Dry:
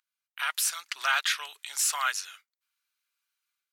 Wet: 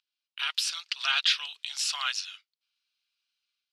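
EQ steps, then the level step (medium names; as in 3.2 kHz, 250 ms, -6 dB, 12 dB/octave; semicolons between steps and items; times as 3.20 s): band-pass 670–7700 Hz; high-order bell 3.7 kHz +11.5 dB 1.3 oct; -5.5 dB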